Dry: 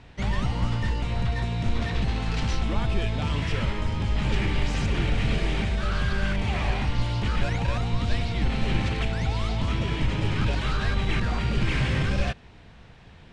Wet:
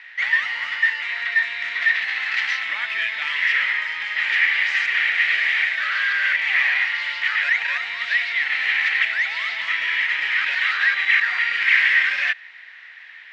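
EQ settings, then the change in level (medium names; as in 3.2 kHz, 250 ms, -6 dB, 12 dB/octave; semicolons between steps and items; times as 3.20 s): resonant high-pass 1.9 kHz, resonance Q 7.6; low-pass 4.1 kHz 12 dB/octave; +6.0 dB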